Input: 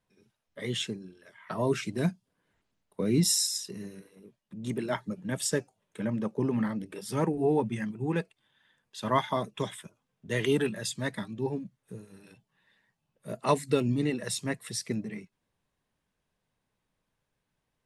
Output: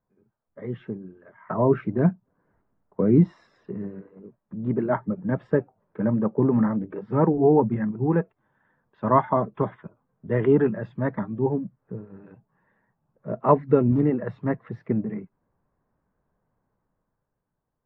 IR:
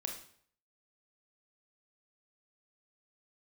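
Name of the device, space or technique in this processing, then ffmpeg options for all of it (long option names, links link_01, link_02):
action camera in a waterproof case: -af "lowpass=frequency=1400:width=0.5412,lowpass=frequency=1400:width=1.3066,dynaudnorm=framelen=120:gausssize=17:maxgain=8dB" -ar 48000 -c:a aac -b:a 48k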